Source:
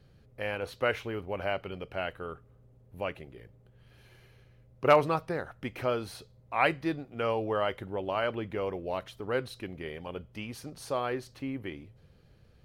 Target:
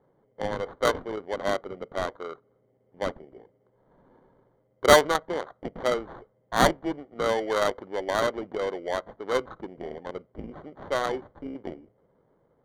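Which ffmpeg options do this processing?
-af "highpass=400,acrusher=samples=17:mix=1:aa=0.000001,adynamicsmooth=sensitivity=2.5:basefreq=1000,volume=2.11"

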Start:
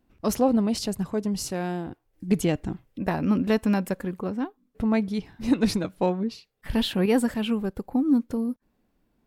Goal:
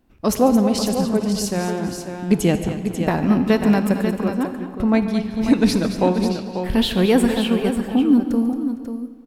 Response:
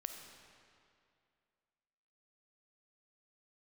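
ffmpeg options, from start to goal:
-filter_complex "[0:a]aecho=1:1:144|222|459|541:0.15|0.282|0.106|0.376,asplit=2[s0][s1];[1:a]atrim=start_sample=2205,asetrate=57330,aresample=44100[s2];[s1][s2]afir=irnorm=-1:irlink=0,volume=1.78[s3];[s0][s3]amix=inputs=2:normalize=0"

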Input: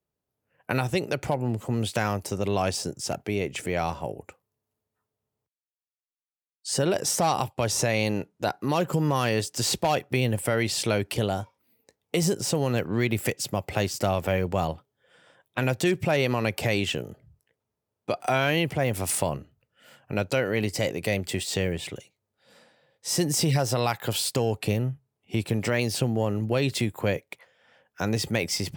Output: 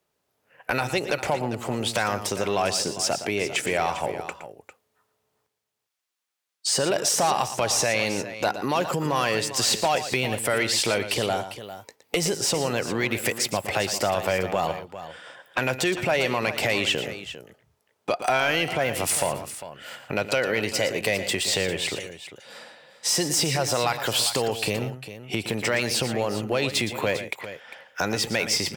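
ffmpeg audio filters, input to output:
-filter_complex "[0:a]acompressor=threshold=0.0141:ratio=2,asplit=2[s0][s1];[s1]highpass=f=720:p=1,volume=5.62,asoftclip=type=tanh:threshold=0.2[s2];[s0][s2]amix=inputs=2:normalize=0,lowpass=f=6800:p=1,volume=0.501,aecho=1:1:116|400:0.266|0.224,volume=1.78"

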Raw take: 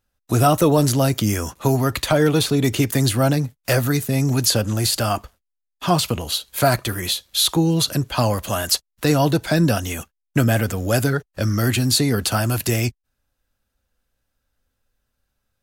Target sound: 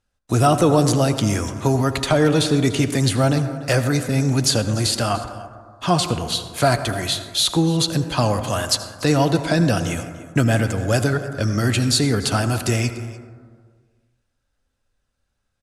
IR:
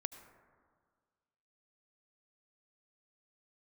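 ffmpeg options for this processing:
-filter_complex "[0:a]lowpass=f=10000:w=0.5412,lowpass=f=10000:w=1.3066,aecho=1:1:293:0.112[s0];[1:a]atrim=start_sample=2205[s1];[s0][s1]afir=irnorm=-1:irlink=0,volume=1.26"

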